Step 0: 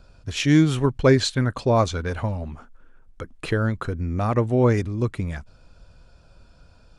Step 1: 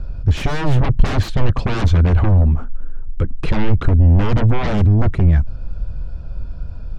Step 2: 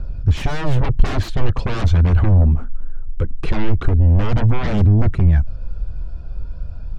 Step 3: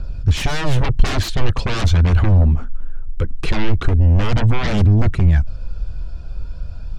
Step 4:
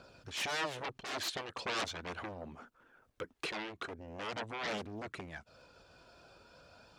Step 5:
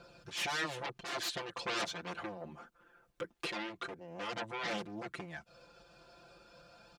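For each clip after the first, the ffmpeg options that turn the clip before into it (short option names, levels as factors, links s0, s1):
-af "aeval=exprs='0.501*sin(PI/2*8.91*val(0)/0.501)':c=same,aemphasis=mode=reproduction:type=riaa,volume=0.188"
-af "aphaser=in_gain=1:out_gain=1:delay=3.1:decay=0.27:speed=0.41:type=triangular,volume=0.75"
-af "highshelf=f=2300:g=10.5"
-af "acompressor=threshold=0.126:ratio=6,highpass=420,volume=0.473"
-af "aecho=1:1:5.8:0.98,volume=0.75"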